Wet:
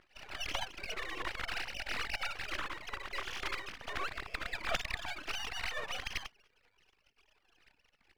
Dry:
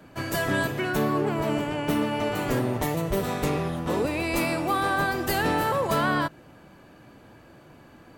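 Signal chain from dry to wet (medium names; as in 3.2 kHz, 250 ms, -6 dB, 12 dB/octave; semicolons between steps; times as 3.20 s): formants replaced by sine waves; spectral gate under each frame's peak -20 dB weak; half-wave rectifier; trim +8.5 dB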